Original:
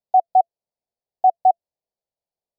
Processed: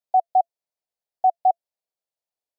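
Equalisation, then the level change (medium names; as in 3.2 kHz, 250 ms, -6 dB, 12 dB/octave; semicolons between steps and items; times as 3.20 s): bass shelf 460 Hz -11.5 dB; 0.0 dB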